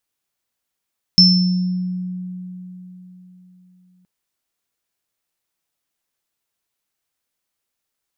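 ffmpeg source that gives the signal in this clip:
-f lavfi -i "aevalsrc='0.299*pow(10,-3*t/4)*sin(2*PI*182*t)+0.562*pow(10,-3*t/0.75)*sin(2*PI*5320*t)':d=2.87:s=44100"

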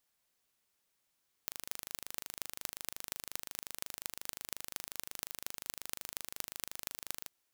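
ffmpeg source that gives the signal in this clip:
-f lavfi -i "aevalsrc='0.376*eq(mod(n,1723),0)*(0.5+0.5*eq(mod(n,10338),0))':d=5.79:s=44100"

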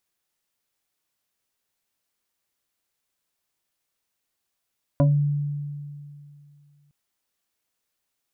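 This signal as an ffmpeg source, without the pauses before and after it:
-f lavfi -i "aevalsrc='0.211*pow(10,-3*t/2.52)*sin(2*PI*145*t+1.3*pow(10,-3*t/0.25)*sin(2*PI*2.92*145*t))':d=1.91:s=44100"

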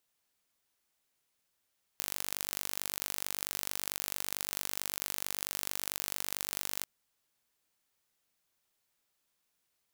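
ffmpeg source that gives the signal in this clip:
-f lavfi -i "aevalsrc='0.473*eq(mod(n,900),0)*(0.5+0.5*eq(mod(n,1800),0))':d=4.85:s=44100"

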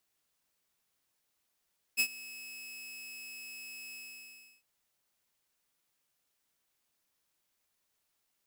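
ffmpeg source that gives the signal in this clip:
-f lavfi -i "aevalsrc='0.0891*(2*mod(2580*t,1)-1)':d=2.657:s=44100,afade=t=in:d=0.03,afade=t=out:st=0.03:d=0.072:silence=0.0944,afade=t=out:st=1.97:d=0.687"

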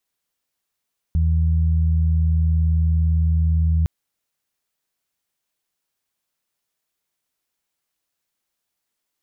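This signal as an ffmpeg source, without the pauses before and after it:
-f lavfi -i "aevalsrc='0.178*sin(2*PI*80.2*t)+0.0562*sin(2*PI*160.4*t)':d=2.71:s=44100"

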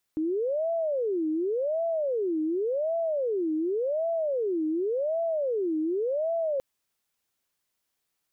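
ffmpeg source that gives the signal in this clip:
-f lavfi -i "aevalsrc='0.0596*sin(2*PI*(489.5*t-179.5/(2*PI*0.89)*sin(2*PI*0.89*t)))':d=6.43:s=44100"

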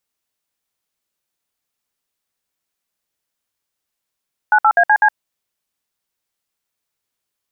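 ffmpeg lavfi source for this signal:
-f lavfi -i "aevalsrc='0.282*clip(min(mod(t,0.125),0.066-mod(t,0.125))/0.002,0,1)*(eq(floor(t/0.125),0)*(sin(2*PI*852*mod(t,0.125))+sin(2*PI*1477*mod(t,0.125)))+eq(floor(t/0.125),1)*(sin(2*PI*852*mod(t,0.125))+sin(2*PI*1336*mod(t,0.125)))+eq(floor(t/0.125),2)*(sin(2*PI*697*mod(t,0.125))+sin(2*PI*1633*mod(t,0.125)))+eq(floor(t/0.125),3)*(sin(2*PI*852*mod(t,0.125))+sin(2*PI*1633*mod(t,0.125)))+eq(floor(t/0.125),4)*(sin(2*PI*852*mod(t,0.125))+sin(2*PI*1633*mod(t,0.125))))':d=0.625:s=44100"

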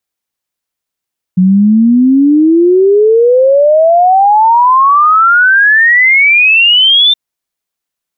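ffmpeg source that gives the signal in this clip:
-f lavfi -i "aevalsrc='0.668*clip(min(t,5.77-t)/0.01,0,1)*sin(2*PI*180*5.77/log(3600/180)*(exp(log(3600/180)*t/5.77)-1))':d=5.77:s=44100"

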